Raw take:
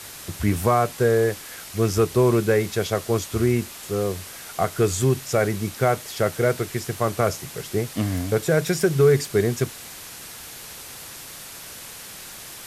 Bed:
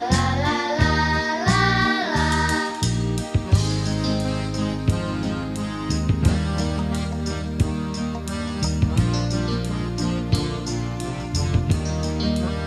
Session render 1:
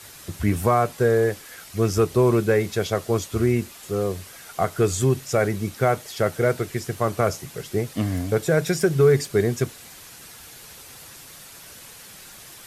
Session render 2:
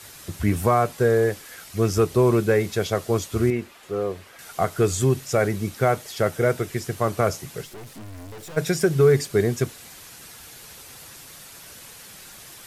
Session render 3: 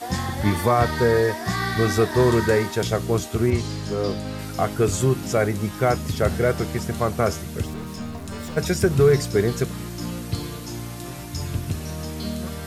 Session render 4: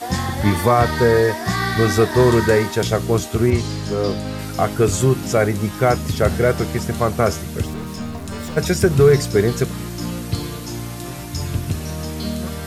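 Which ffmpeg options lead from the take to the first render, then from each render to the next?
ffmpeg -i in.wav -af "afftdn=noise_reduction=6:noise_floor=-40" out.wav
ffmpeg -i in.wav -filter_complex "[0:a]asettb=1/sr,asplit=3[link_01][link_02][link_03];[link_01]atrim=end=3.504[link_04];[link_02]atrim=start=3.5:end=4.39,asetpts=PTS-STARTPTS,afade=type=in:duration=0.004:curve=qsin,afade=type=out:start_time=0.886:duration=0.004:curve=qsin,bass=frequency=250:gain=-8,treble=frequency=4000:gain=-12[link_05];[link_03]atrim=start=4.386[link_06];[link_04][link_05]acrossfade=duration=0.004:curve1=hsin:curve2=qsin[link_07];[link_07][link_06]acrossfade=duration=0.004:curve1=qsin:curve2=hsin,asettb=1/sr,asplit=3[link_08][link_09][link_10];[link_08]atrim=end=6.294[link_11];[link_09]atrim=start=6.29:end=6.7,asetpts=PTS-STARTPTS,afade=type=in:duration=0.004:curve=qsin,afade=type=out:start_time=0.406:duration=0.004:curve=qsin,bandreject=frequency=4300:width=13[link_12];[link_10]atrim=start=6.696[link_13];[link_11][link_12]acrossfade=duration=0.004:curve1=hsin:curve2=qsin[link_14];[link_14][link_13]acrossfade=duration=0.004:curve1=qsin:curve2=hsin,asplit=3[link_15][link_16][link_17];[link_15]afade=type=out:start_time=7.64:duration=0.02[link_18];[link_16]aeval=exprs='(tanh(79.4*val(0)+0.45)-tanh(0.45))/79.4':channel_layout=same,afade=type=in:start_time=7.64:duration=0.02,afade=type=out:start_time=8.56:duration=0.02[link_19];[link_17]afade=type=in:start_time=8.56:duration=0.02[link_20];[link_18][link_19][link_20]amix=inputs=3:normalize=0" out.wav
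ffmpeg -i in.wav -i bed.wav -filter_complex "[1:a]volume=-7dB[link_01];[0:a][link_01]amix=inputs=2:normalize=0" out.wav
ffmpeg -i in.wav -af "volume=4dB,alimiter=limit=-2dB:level=0:latency=1" out.wav

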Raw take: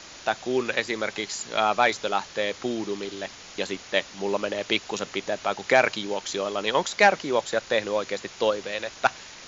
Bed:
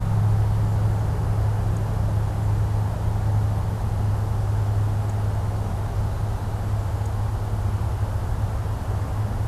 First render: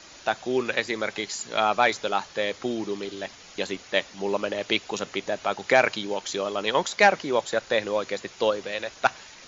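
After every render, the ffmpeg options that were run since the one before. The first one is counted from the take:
ffmpeg -i in.wav -af "afftdn=noise_reduction=6:noise_floor=-45" out.wav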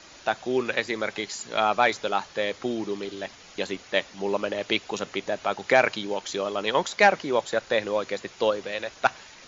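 ffmpeg -i in.wav -af "highshelf=frequency=5000:gain=-4" out.wav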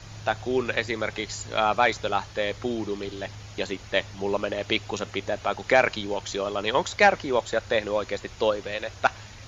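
ffmpeg -i in.wav -i bed.wav -filter_complex "[1:a]volume=-21.5dB[link_01];[0:a][link_01]amix=inputs=2:normalize=0" out.wav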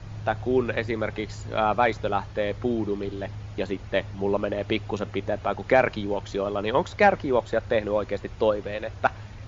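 ffmpeg -i in.wav -af "lowpass=frequency=1700:poles=1,lowshelf=frequency=340:gain=6" out.wav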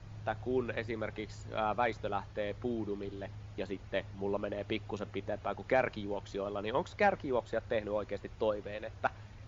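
ffmpeg -i in.wav -af "volume=-10dB" out.wav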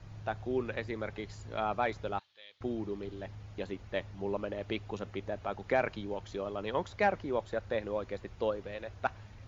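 ffmpeg -i in.wav -filter_complex "[0:a]asettb=1/sr,asplit=3[link_01][link_02][link_03];[link_01]atrim=end=2.194[link_04];[link_02]atrim=start=2.19:end=2.61,asetpts=PTS-STARTPTS,afade=type=in:duration=0.004:curve=qsin,afade=type=out:start_time=0.416:duration=0.004:curve=qsin,bandpass=frequency=3600:width_type=q:width=3.1[link_05];[link_03]atrim=start=2.606[link_06];[link_04][link_05]acrossfade=duration=0.004:curve1=hsin:curve2=qsin[link_07];[link_07][link_06]acrossfade=duration=0.004:curve1=qsin:curve2=hsin" out.wav

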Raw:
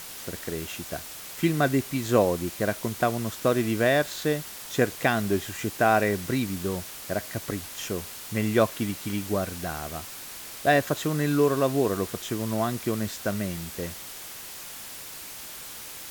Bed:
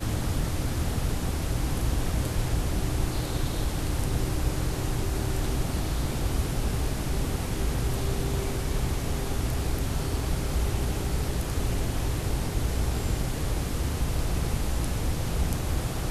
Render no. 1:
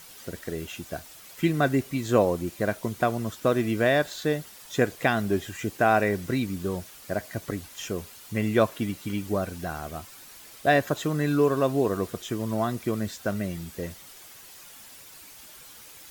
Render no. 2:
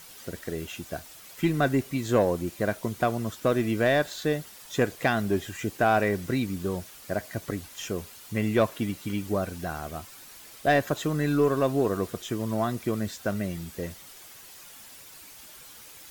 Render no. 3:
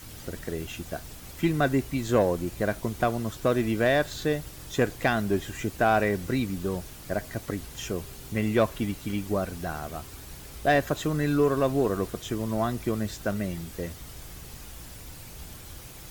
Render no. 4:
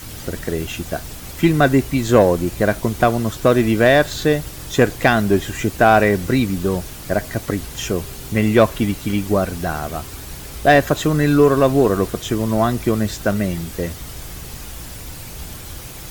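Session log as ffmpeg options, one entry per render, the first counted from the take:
ffmpeg -i in.wav -af "afftdn=noise_reduction=9:noise_floor=-41" out.wav
ffmpeg -i in.wav -af "aeval=exprs='(tanh(3.98*val(0)+0.15)-tanh(0.15))/3.98':channel_layout=same" out.wav
ffmpeg -i in.wav -i bed.wav -filter_complex "[1:a]volume=-17.5dB[link_01];[0:a][link_01]amix=inputs=2:normalize=0" out.wav
ffmpeg -i in.wav -af "volume=10dB" out.wav

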